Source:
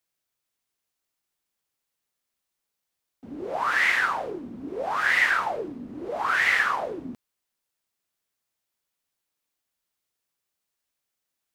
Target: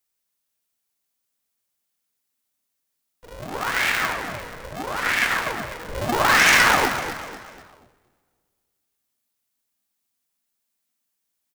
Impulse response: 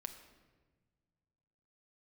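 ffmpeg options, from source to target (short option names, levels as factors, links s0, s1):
-filter_complex "[0:a]asettb=1/sr,asplit=3[s0][s1][s2];[s0]atrim=end=5.884[s3];[s1]atrim=start=5.88:end=6.89,asetpts=PTS-STARTPTS,afade=t=in:d=0.004:c=qsin,afade=t=out:st=1.006:d=0.004:c=qsin,aeval=exprs='0.355*(cos(1*acos(clip(val(0)/0.355,-1,1)))-cos(1*PI/2))+0.158*(cos(5*acos(clip(val(0)/0.355,-1,1)))-cos(5*PI/2))':c=same[s4];[s2]atrim=start=6.886[s5];[s3][s4]acrossfade=d=0.004:c1=hsin:c2=qsin[s6];[s6][s5]acrossfade=d=0.004:c1=qsin:c2=hsin,asubboost=boost=2.5:cutoff=75,asplit=5[s7][s8][s9][s10][s11];[s8]adelay=248,afreqshift=-35,volume=0.282[s12];[s9]adelay=496,afreqshift=-70,volume=0.116[s13];[s10]adelay=744,afreqshift=-105,volume=0.0473[s14];[s11]adelay=992,afreqshift=-140,volume=0.0195[s15];[s7][s12][s13][s14][s15]amix=inputs=5:normalize=0,asplit=2[s16][s17];[1:a]atrim=start_sample=2205,highshelf=f=5100:g=11.5[s18];[s17][s18]afir=irnorm=-1:irlink=0,volume=1.58[s19];[s16][s19]amix=inputs=2:normalize=0,aeval=exprs='val(0)*sgn(sin(2*PI*240*n/s))':c=same,volume=0.447"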